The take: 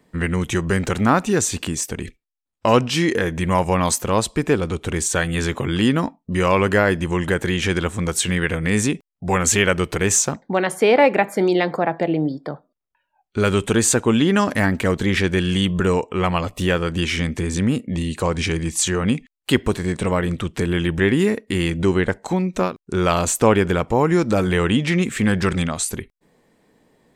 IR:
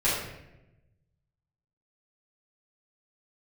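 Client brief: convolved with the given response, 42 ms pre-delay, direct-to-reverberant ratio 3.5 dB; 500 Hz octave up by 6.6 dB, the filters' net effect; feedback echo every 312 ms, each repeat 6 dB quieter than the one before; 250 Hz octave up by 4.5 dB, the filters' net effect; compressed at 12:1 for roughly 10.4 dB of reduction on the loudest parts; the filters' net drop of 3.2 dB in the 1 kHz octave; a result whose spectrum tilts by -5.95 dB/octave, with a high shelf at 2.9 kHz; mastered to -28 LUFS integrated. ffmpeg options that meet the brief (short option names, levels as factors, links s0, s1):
-filter_complex "[0:a]equalizer=f=250:t=o:g=4,equalizer=f=500:t=o:g=8.5,equalizer=f=1000:t=o:g=-7,highshelf=f=2900:g=-4.5,acompressor=threshold=0.178:ratio=12,aecho=1:1:312|624|936|1248|1560|1872:0.501|0.251|0.125|0.0626|0.0313|0.0157,asplit=2[s0][s1];[1:a]atrim=start_sample=2205,adelay=42[s2];[s1][s2]afir=irnorm=-1:irlink=0,volume=0.15[s3];[s0][s3]amix=inputs=2:normalize=0,volume=0.316"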